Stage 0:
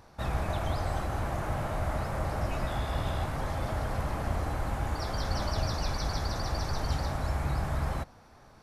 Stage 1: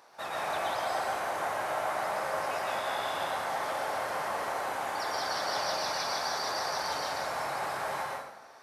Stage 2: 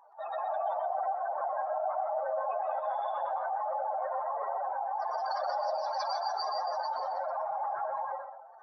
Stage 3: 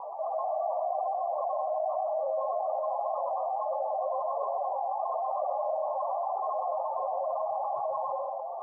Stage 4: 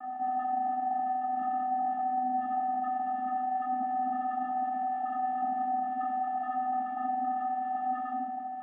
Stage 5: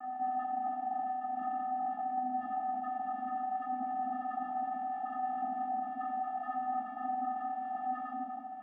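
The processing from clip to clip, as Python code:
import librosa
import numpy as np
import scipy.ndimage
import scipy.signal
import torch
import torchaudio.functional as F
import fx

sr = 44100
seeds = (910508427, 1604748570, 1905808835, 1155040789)

y1 = scipy.signal.sosfilt(scipy.signal.butter(2, 560.0, 'highpass', fs=sr, output='sos'), x)
y1 = fx.rev_plate(y1, sr, seeds[0], rt60_s=0.91, hf_ratio=0.75, predelay_ms=105, drr_db=-2.5)
y1 = y1 * librosa.db_to_amplitude(1.0)
y2 = fx.spec_expand(y1, sr, power=3.4)
y2 = y2 + 10.0 ** (-9.0 / 20.0) * np.pad(y2, (int(124 * sr / 1000.0), 0))[:len(y2)]
y3 = scipy.signal.sosfilt(scipy.signal.butter(16, 1100.0, 'lowpass', fs=sr, output='sos'), y2)
y3 = y3 + 0.58 * np.pad(y3, (int(1.7 * sr / 1000.0), 0))[:len(y3)]
y3 = fx.env_flatten(y3, sr, amount_pct=70)
y3 = y3 * librosa.db_to_amplitude(-2.5)
y4 = fx.dereverb_blind(y3, sr, rt60_s=0.99)
y4 = fx.vocoder(y4, sr, bands=8, carrier='square', carrier_hz=252.0)
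y4 = fx.room_shoebox(y4, sr, seeds[1], volume_m3=470.0, walls='furnished', distance_m=2.4)
y5 = y4 + 10.0 ** (-9.5 / 20.0) * np.pad(y4, (int(244 * sr / 1000.0), 0))[:len(y4)]
y5 = y5 * librosa.db_to_amplitude(-2.0)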